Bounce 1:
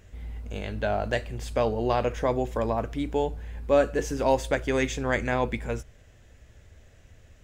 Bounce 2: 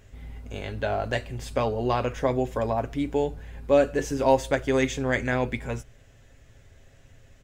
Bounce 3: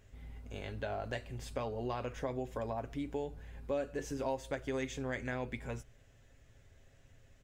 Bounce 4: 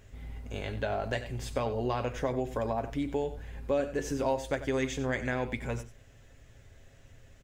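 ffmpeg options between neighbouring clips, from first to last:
ffmpeg -i in.wav -af "aecho=1:1:7.4:0.44" out.wav
ffmpeg -i in.wav -af "acompressor=threshold=-27dB:ratio=2.5,volume=-8.5dB" out.wav
ffmpeg -i in.wav -af "aecho=1:1:92:0.211,volume=6.5dB" out.wav

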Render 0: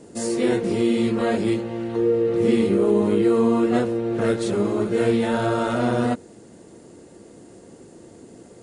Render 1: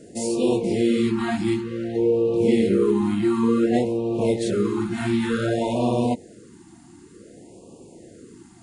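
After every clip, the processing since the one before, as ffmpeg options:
ffmpeg -i in.wav -af "afftfilt=real='re*(1-between(b*sr/1024,480*pow(1700/480,0.5+0.5*sin(2*PI*0.55*pts/sr))/1.41,480*pow(1700/480,0.5+0.5*sin(2*PI*0.55*pts/sr))*1.41))':imag='im*(1-between(b*sr/1024,480*pow(1700/480,0.5+0.5*sin(2*PI*0.55*pts/sr))/1.41,480*pow(1700/480,0.5+0.5*sin(2*PI*0.55*pts/sr))*1.41))':win_size=1024:overlap=0.75" out.wav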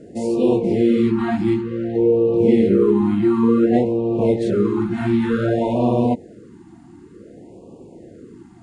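ffmpeg -i in.wav -af "lowpass=frequency=1300:poles=1,volume=4.5dB" out.wav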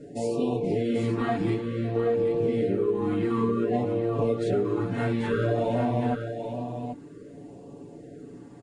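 ffmpeg -i in.wav -filter_complex "[0:a]aecho=1:1:7:0.85,acompressor=threshold=-17dB:ratio=6,asplit=2[link_01][link_02];[link_02]aecho=0:1:785:0.422[link_03];[link_01][link_03]amix=inputs=2:normalize=0,volume=-5dB" out.wav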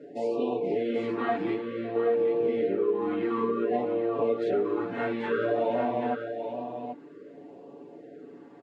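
ffmpeg -i in.wav -af "highpass=330,lowpass=3000,volume=1dB" out.wav

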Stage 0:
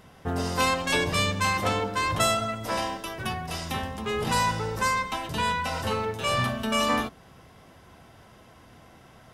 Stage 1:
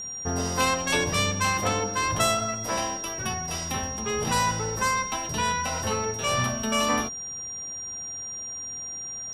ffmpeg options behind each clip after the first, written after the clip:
ffmpeg -i in.wav -af "aeval=exprs='val(0)+0.0224*sin(2*PI*5700*n/s)':channel_layout=same" out.wav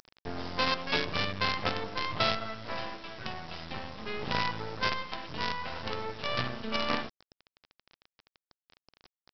ffmpeg -i in.wav -af "highpass=79,aresample=11025,acrusher=bits=4:dc=4:mix=0:aa=0.000001,aresample=44100,volume=-4dB" out.wav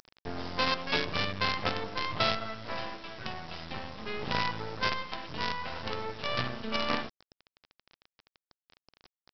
ffmpeg -i in.wav -af anull out.wav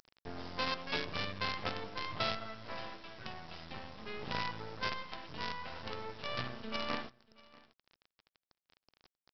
ffmpeg -i in.wav -af "aecho=1:1:638:0.0708,volume=-7dB" out.wav

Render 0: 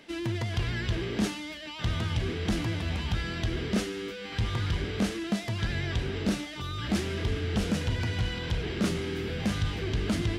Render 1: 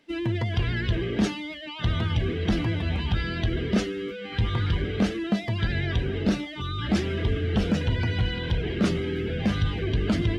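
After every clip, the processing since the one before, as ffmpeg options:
ffmpeg -i in.wav -af "afftdn=noise_reduction=15:noise_floor=-40,volume=4.5dB" out.wav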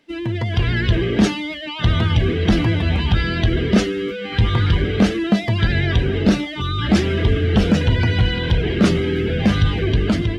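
ffmpeg -i in.wav -af "dynaudnorm=framelen=150:gausssize=7:maxgain=6dB,volume=2.5dB" out.wav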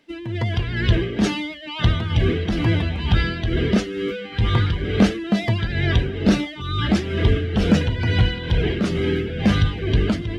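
ffmpeg -i in.wav -af "tremolo=f=2.2:d=0.6" out.wav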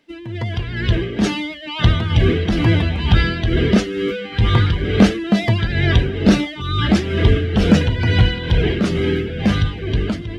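ffmpeg -i in.wav -af "dynaudnorm=framelen=120:gausssize=21:maxgain=11.5dB,volume=-1dB" out.wav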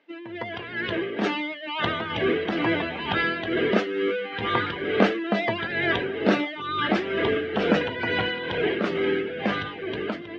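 ffmpeg -i in.wav -af "highpass=400,lowpass=2400" out.wav

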